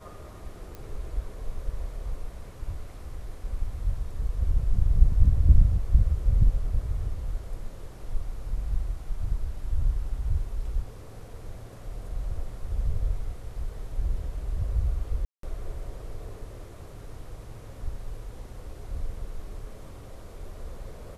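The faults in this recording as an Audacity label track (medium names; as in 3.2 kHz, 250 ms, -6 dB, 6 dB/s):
0.750000	0.750000	pop -26 dBFS
15.250000	15.430000	dropout 183 ms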